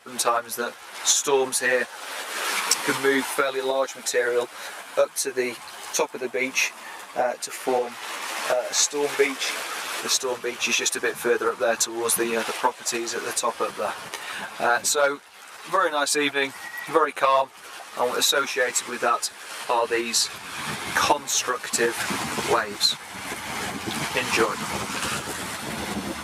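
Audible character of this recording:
tremolo saw up 2.7 Hz, depth 45%
a shimmering, thickened sound

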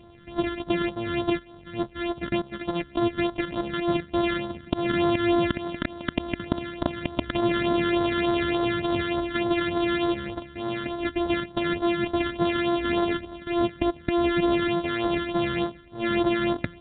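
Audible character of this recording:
a buzz of ramps at a fixed pitch in blocks of 128 samples
phaser sweep stages 12, 3.4 Hz, lowest notch 770–2,500 Hz
A-law companding

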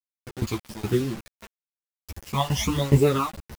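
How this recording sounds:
tremolo saw down 2.4 Hz, depth 95%
phaser sweep stages 12, 1.1 Hz, lowest notch 390–1,200 Hz
a quantiser's noise floor 8 bits, dither none
a shimmering, thickened sound

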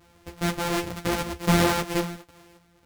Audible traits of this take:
a buzz of ramps at a fixed pitch in blocks of 256 samples
sample-and-hold tremolo
a shimmering, thickened sound

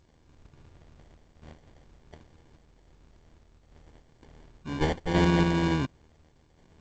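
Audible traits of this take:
a buzz of ramps at a fixed pitch in blocks of 32 samples
sample-and-hold tremolo
aliases and images of a low sample rate 1,300 Hz, jitter 0%
G.722

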